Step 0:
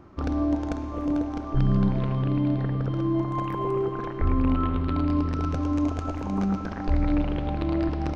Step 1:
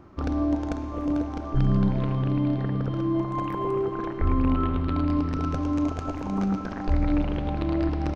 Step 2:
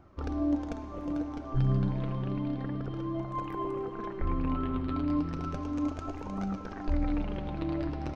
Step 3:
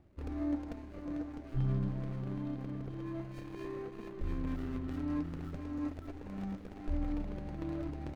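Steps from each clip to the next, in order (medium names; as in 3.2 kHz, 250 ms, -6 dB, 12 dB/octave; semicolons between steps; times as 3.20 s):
delay 928 ms -15 dB
flange 0.31 Hz, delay 1.3 ms, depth 6.7 ms, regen +44%; trim -2.5 dB
median filter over 41 samples; trim -5.5 dB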